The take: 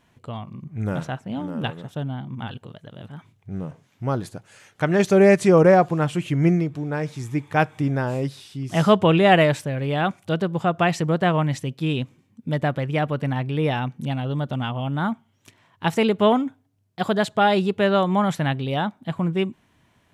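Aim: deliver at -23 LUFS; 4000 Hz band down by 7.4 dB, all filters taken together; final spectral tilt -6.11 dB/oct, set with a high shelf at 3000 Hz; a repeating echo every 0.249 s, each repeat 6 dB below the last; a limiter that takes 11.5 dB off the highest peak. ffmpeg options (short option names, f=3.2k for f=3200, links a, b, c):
-af "highshelf=f=3k:g=-8.5,equalizer=f=4k:t=o:g=-4.5,alimiter=limit=-15.5dB:level=0:latency=1,aecho=1:1:249|498|747|996|1245|1494:0.501|0.251|0.125|0.0626|0.0313|0.0157,volume=3dB"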